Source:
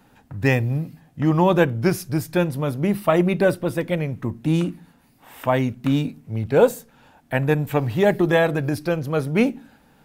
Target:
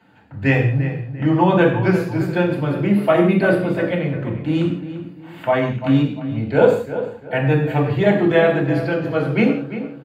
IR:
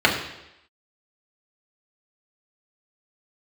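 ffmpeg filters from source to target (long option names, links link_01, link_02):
-filter_complex "[0:a]asettb=1/sr,asplit=3[link_01][link_02][link_03];[link_01]atrim=end=2.924[link_04];[link_02]atrim=start=2.92:end=3.61,asetpts=PTS-STARTPTS,afade=type=in:duration=0.004:curve=qsin,afade=type=out:start_time=0.686:duration=0.004:curve=qsin,equalizer=frequency=11000:width_type=o:width=0.29:gain=13.5[link_05];[link_03]atrim=start=3.606[link_06];[link_04][link_05]acrossfade=duration=0.004:curve1=hsin:curve2=qsin[link_07];[link_07][link_06]acrossfade=duration=0.004:curve1=qsin:curve2=hsin,asplit=2[link_08][link_09];[link_09]adelay=345,lowpass=frequency=2500:poles=1,volume=-11dB,asplit=2[link_10][link_11];[link_11]adelay=345,lowpass=frequency=2500:poles=1,volume=0.35,asplit=2[link_12][link_13];[link_13]adelay=345,lowpass=frequency=2500:poles=1,volume=0.35,asplit=2[link_14][link_15];[link_15]adelay=345,lowpass=frequency=2500:poles=1,volume=0.35[link_16];[link_08][link_10][link_12][link_14][link_16]amix=inputs=5:normalize=0[link_17];[1:a]atrim=start_sample=2205,afade=type=out:start_time=0.24:duration=0.01,atrim=end_sample=11025[link_18];[link_17][link_18]afir=irnorm=-1:irlink=0,volume=-18dB"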